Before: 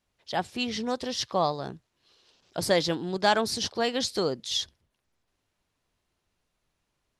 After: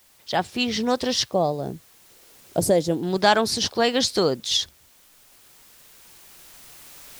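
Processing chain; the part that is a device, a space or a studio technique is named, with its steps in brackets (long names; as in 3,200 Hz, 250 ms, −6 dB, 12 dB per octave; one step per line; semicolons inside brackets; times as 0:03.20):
0:01.28–0:03.03: flat-topped bell 2,200 Hz −13.5 dB 2.8 octaves
cheap recorder with automatic gain (white noise bed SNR 31 dB; camcorder AGC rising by 5.2 dB per second)
level +5 dB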